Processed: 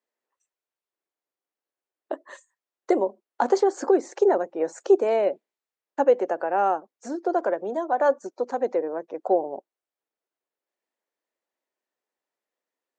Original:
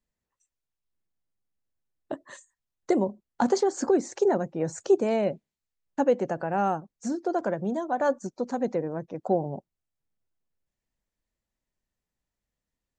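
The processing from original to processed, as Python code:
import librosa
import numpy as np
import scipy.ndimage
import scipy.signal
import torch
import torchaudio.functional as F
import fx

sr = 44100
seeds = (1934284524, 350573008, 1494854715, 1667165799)

y = scipy.signal.sosfilt(scipy.signal.butter(4, 350.0, 'highpass', fs=sr, output='sos'), x)
y = fx.high_shelf(y, sr, hz=3100.0, db=-11.0)
y = y * librosa.db_to_amplitude(5.0)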